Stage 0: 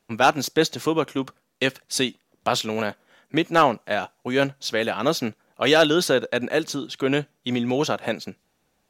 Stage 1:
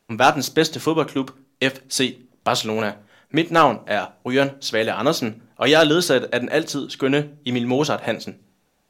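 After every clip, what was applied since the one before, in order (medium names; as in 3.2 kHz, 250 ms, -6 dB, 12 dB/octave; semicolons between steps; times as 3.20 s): simulated room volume 210 m³, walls furnished, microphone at 0.31 m; trim +2.5 dB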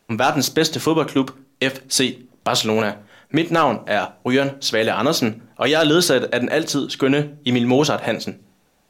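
peak limiter -10.5 dBFS, peak gain reduction 9 dB; trim +5 dB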